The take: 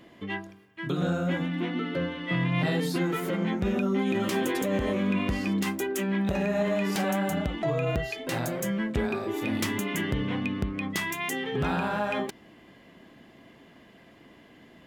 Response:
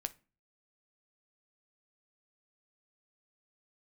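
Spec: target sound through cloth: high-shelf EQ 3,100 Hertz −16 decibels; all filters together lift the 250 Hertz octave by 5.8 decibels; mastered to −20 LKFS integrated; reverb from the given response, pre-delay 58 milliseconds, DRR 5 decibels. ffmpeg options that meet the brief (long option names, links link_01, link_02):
-filter_complex "[0:a]equalizer=frequency=250:width_type=o:gain=8,asplit=2[link_01][link_02];[1:a]atrim=start_sample=2205,adelay=58[link_03];[link_02][link_03]afir=irnorm=-1:irlink=0,volume=-4dB[link_04];[link_01][link_04]amix=inputs=2:normalize=0,highshelf=frequency=3100:gain=-16,volume=4dB"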